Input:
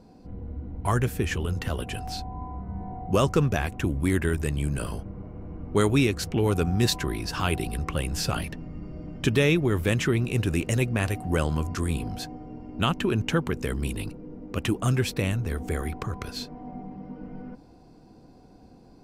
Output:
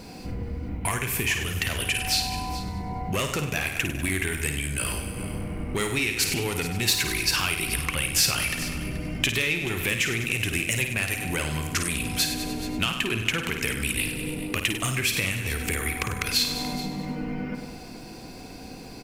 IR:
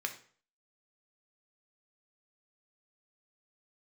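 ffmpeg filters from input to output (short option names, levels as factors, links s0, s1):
-filter_complex "[0:a]asoftclip=type=tanh:threshold=0.15,equalizer=f=2300:w=1.4:g=12,asplit=2[s0][s1];[s1]aecho=0:1:98|196|294|392|490|588:0.266|0.146|0.0805|0.0443|0.0243|0.0134[s2];[s0][s2]amix=inputs=2:normalize=0,acompressor=threshold=0.0141:ratio=6,asplit=2[s3][s4];[s4]aecho=0:1:53|430:0.422|0.178[s5];[s3][s5]amix=inputs=2:normalize=0,crystalizer=i=4:c=0,volume=2.66"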